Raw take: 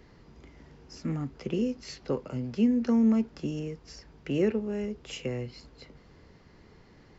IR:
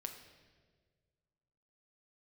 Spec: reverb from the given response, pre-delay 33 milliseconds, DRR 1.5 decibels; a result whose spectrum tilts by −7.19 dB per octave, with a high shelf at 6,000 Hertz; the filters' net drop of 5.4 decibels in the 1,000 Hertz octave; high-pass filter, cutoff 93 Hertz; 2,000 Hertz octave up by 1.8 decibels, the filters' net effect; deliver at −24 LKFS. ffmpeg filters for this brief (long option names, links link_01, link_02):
-filter_complex "[0:a]highpass=93,equalizer=frequency=1000:width_type=o:gain=-8.5,equalizer=frequency=2000:width_type=o:gain=5.5,highshelf=frequency=6000:gain=-9,asplit=2[link_01][link_02];[1:a]atrim=start_sample=2205,adelay=33[link_03];[link_02][link_03]afir=irnorm=-1:irlink=0,volume=1dB[link_04];[link_01][link_04]amix=inputs=2:normalize=0,volume=5dB"